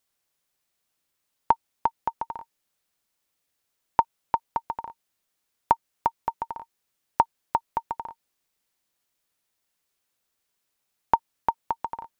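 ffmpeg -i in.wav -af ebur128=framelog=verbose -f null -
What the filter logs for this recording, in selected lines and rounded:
Integrated loudness:
  I:         -29.7 LUFS
  Threshold: -40.2 LUFS
Loudness range:
  LRA:         5.2 LU
  Threshold: -52.9 LUFS
  LRA low:   -36.1 LUFS
  LRA high:  -30.9 LUFS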